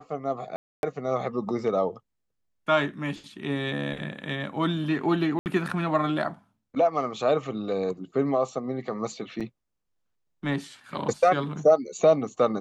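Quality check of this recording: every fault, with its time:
0:00.56–0:00.83: drop-out 271 ms
0:05.39–0:05.46: drop-out 69 ms
0:09.40–0:09.41: drop-out 6.4 ms

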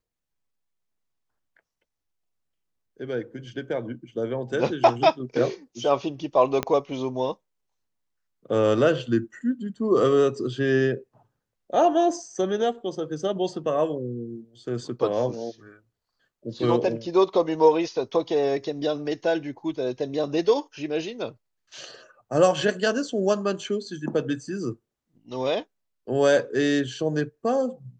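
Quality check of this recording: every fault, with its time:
0:06.63: click −11 dBFS

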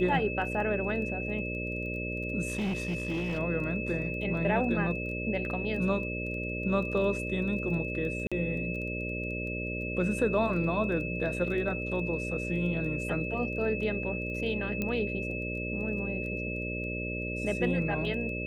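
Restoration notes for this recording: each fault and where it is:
mains buzz 60 Hz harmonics 10 −36 dBFS
surface crackle 11 per second −39 dBFS
whistle 2,600 Hz −36 dBFS
0:02.48–0:03.39: clipping −27.5 dBFS
0:08.27–0:08.32: drop-out 46 ms
0:14.82: click −18 dBFS

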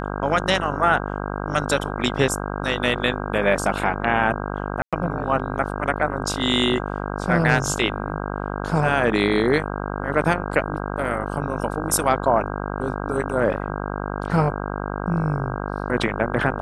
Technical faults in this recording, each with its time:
mains buzz 50 Hz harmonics 32 −28 dBFS
0:04.82–0:04.93: drop-out 106 ms

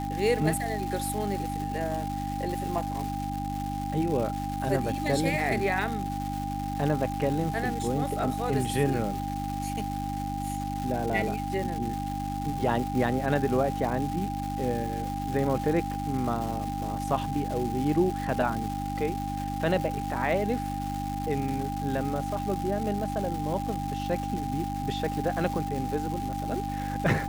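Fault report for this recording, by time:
surface crackle 540 per second −33 dBFS
mains hum 50 Hz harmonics 6 −34 dBFS
whistle 800 Hz −33 dBFS

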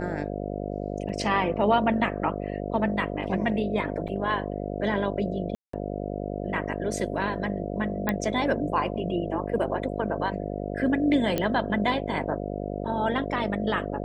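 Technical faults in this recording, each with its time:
mains buzz 50 Hz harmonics 14 −32 dBFS
0:01.09–0:01.10: drop-out 5.1 ms
0:04.08–0:04.09: drop-out 5.4 ms
0:05.55–0:05.73: drop-out 184 ms
0:08.09: click −11 dBFS
0:11.38: click −12 dBFS

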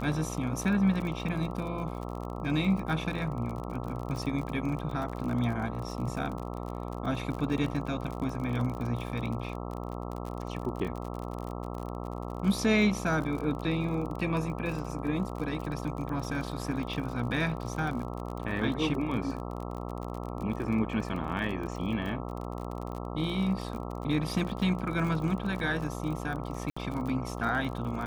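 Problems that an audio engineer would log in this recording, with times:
mains buzz 60 Hz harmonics 22 −37 dBFS
surface crackle 43 per second −35 dBFS
0:26.70–0:26.77: drop-out 65 ms

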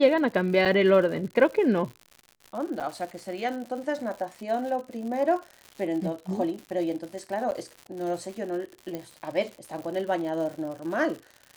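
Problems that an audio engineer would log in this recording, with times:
surface crackle 130 per second −35 dBFS
0:00.65–0:00.66: drop-out 6.7 ms
0:02.80–0:02.81: drop-out 7.1 ms
0:07.51–0:07.52: drop-out 9.4 ms
0:08.95: click −20 dBFS

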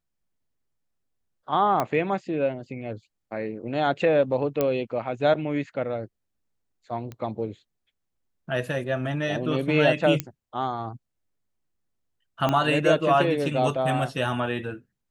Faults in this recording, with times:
0:01.80: click −11 dBFS
0:04.61: click −10 dBFS
0:07.12: click −24 dBFS
0:10.20: click −10 dBFS
0:12.49: click −11 dBFS

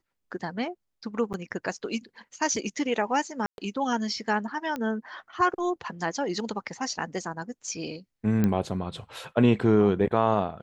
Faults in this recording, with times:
0:01.33–0:01.34: drop-out 9.1 ms
0:03.46–0:03.58: drop-out 121 ms
0:04.76: click −19 dBFS
0:08.44: click −13 dBFS

